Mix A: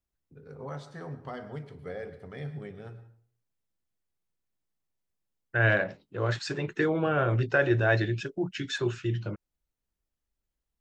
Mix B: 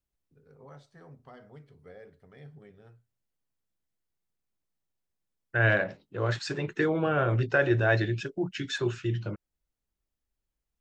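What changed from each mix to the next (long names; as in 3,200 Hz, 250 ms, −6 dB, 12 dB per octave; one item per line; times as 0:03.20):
first voice −8.0 dB
reverb: off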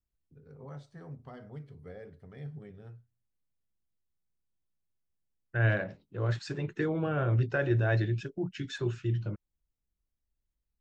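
second voice −7.5 dB
master: add low-shelf EQ 250 Hz +10 dB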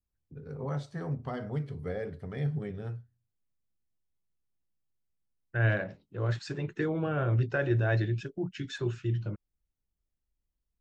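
first voice +11.0 dB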